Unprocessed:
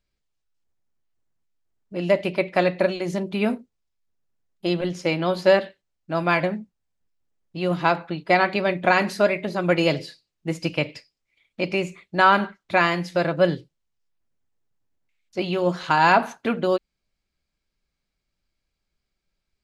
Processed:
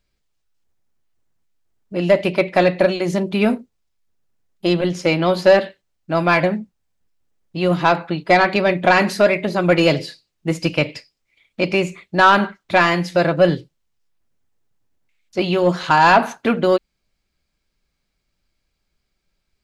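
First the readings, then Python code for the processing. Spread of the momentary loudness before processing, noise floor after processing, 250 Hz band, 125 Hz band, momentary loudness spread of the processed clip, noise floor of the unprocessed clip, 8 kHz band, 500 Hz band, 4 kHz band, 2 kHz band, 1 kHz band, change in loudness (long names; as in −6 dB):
12 LU, −74 dBFS, +6.0 dB, +6.0 dB, 11 LU, −81 dBFS, +7.0 dB, +5.5 dB, +5.5 dB, +4.5 dB, +4.5 dB, +5.0 dB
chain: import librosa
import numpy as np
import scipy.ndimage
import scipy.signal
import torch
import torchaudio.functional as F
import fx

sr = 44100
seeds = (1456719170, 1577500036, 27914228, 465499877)

y = 10.0 ** (-9.5 / 20.0) * np.tanh(x / 10.0 ** (-9.5 / 20.0))
y = y * librosa.db_to_amplitude(6.5)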